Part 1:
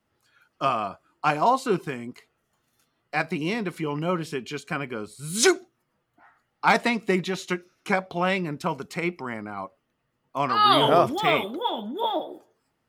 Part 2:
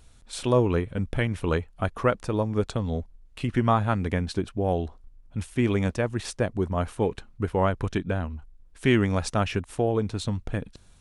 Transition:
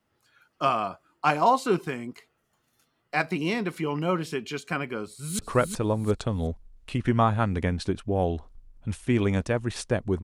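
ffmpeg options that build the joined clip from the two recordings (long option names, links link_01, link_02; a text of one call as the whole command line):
ffmpeg -i cue0.wav -i cue1.wav -filter_complex "[0:a]apad=whole_dur=10.23,atrim=end=10.23,atrim=end=5.392[link_01];[1:a]atrim=start=1.878:end=6.72[link_02];[link_01][link_02]acrossfade=duration=0.004:curve1=hsin:curve2=hsin,asplit=2[link_03][link_04];[link_04]afade=type=in:start_time=5.05:duration=0.01,afade=type=out:start_time=5.39:duration=0.01,aecho=0:1:360|720|1080:0.562341|0.140585|0.0351463[link_05];[link_03][link_05]amix=inputs=2:normalize=0" out.wav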